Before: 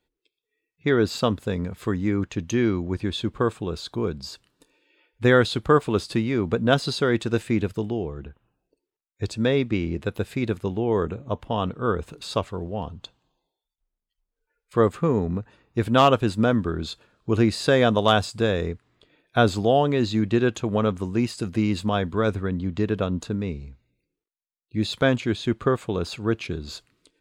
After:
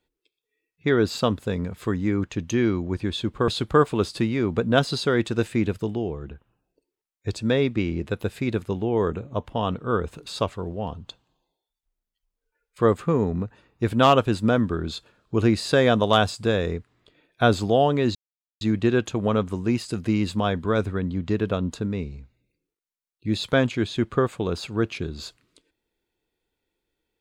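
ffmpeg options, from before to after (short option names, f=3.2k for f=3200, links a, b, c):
-filter_complex "[0:a]asplit=3[a][b][c];[a]atrim=end=3.482[d];[b]atrim=start=5.428:end=20.1,asetpts=PTS-STARTPTS,afade=t=out:st=14.668:d=0.004:c=hsin,apad=pad_dur=0.46[e];[c]atrim=start=20.1,asetpts=PTS-STARTPTS,afade=t=in:d=0.004:c=hsin[f];[e][f]concat=n=2:v=0:a=1[g];[d][g]acrossfade=d=0.004:c1=hsin:c2=hsin"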